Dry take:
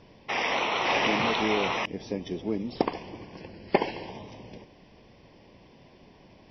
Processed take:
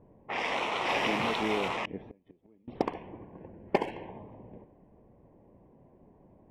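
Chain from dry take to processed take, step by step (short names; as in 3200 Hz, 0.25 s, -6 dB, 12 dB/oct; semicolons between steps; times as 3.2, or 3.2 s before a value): Wiener smoothing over 9 samples; low-pass opened by the level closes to 780 Hz, open at -22.5 dBFS; 2.01–2.68 flipped gate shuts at -28 dBFS, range -29 dB; gain -3.5 dB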